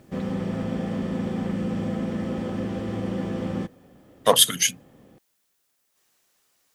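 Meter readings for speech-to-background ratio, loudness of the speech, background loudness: 9.5 dB, -19.5 LUFS, -29.0 LUFS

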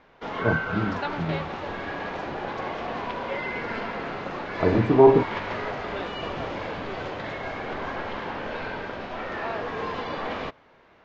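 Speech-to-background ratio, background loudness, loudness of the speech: 9.0 dB, -31.5 LUFS, -22.5 LUFS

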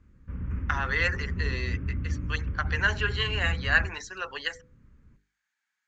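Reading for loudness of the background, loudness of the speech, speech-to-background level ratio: -33.5 LUFS, -29.0 LUFS, 4.5 dB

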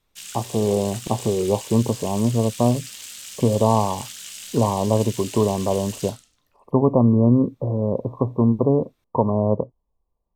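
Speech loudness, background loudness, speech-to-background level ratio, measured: -21.5 LUFS, -34.5 LUFS, 13.0 dB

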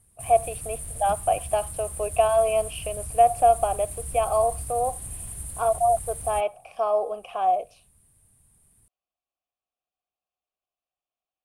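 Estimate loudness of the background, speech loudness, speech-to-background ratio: -34.5 LUFS, -24.5 LUFS, 10.0 dB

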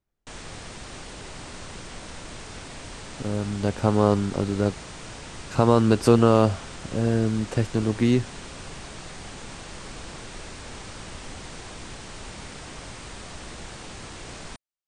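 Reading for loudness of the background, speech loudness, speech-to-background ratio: -39.0 LUFS, -22.5 LUFS, 16.5 dB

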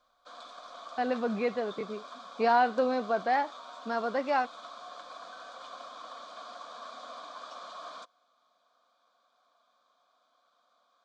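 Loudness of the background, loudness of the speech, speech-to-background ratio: -45.5 LUFS, -30.0 LUFS, 15.5 dB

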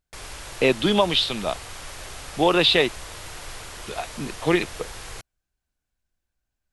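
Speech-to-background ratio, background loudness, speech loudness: 16.5 dB, -37.5 LUFS, -21.0 LUFS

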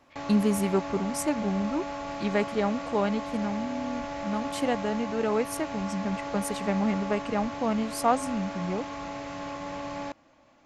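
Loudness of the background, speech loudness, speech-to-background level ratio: -36.0 LUFS, -29.5 LUFS, 6.5 dB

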